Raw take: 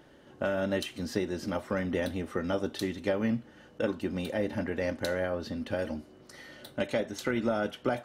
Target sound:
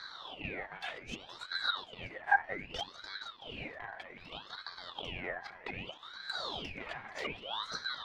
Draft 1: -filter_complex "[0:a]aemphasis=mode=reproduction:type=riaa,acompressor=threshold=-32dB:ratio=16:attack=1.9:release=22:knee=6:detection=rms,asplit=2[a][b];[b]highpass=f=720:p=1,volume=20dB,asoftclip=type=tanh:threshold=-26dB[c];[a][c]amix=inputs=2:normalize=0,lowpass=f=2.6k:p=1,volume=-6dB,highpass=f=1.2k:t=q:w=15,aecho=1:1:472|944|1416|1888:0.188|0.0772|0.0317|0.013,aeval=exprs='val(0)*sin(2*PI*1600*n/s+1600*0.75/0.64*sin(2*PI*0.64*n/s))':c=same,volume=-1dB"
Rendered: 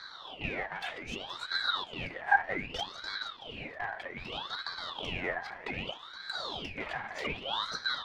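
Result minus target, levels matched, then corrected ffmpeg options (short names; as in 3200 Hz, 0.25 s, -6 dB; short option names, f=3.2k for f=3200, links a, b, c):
compressor: peak gain reduction -9.5 dB
-filter_complex "[0:a]aemphasis=mode=reproduction:type=riaa,acompressor=threshold=-42dB:ratio=16:attack=1.9:release=22:knee=6:detection=rms,asplit=2[a][b];[b]highpass=f=720:p=1,volume=20dB,asoftclip=type=tanh:threshold=-26dB[c];[a][c]amix=inputs=2:normalize=0,lowpass=f=2.6k:p=1,volume=-6dB,highpass=f=1.2k:t=q:w=15,aecho=1:1:472|944|1416|1888:0.188|0.0772|0.0317|0.013,aeval=exprs='val(0)*sin(2*PI*1600*n/s+1600*0.75/0.64*sin(2*PI*0.64*n/s))':c=same,volume=-1dB"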